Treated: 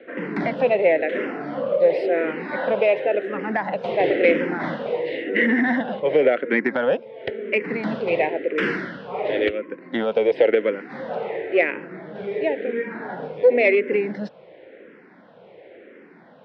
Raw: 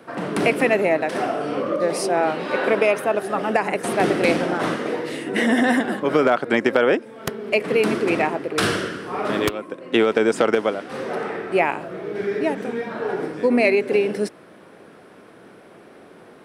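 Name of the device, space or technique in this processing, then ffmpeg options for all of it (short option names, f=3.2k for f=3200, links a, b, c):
barber-pole phaser into a guitar amplifier: -filter_complex "[0:a]asplit=2[a][b];[b]afreqshift=-0.95[c];[a][c]amix=inputs=2:normalize=1,asoftclip=type=tanh:threshold=-10.5dB,highpass=89,equalizer=f=110:t=q:w=4:g=-7,equalizer=f=520:t=q:w=4:g=8,equalizer=f=1.2k:t=q:w=4:g=-9,equalizer=f=2k:t=q:w=4:g=7,lowpass=f=3.6k:w=0.5412,lowpass=f=3.6k:w=1.3066"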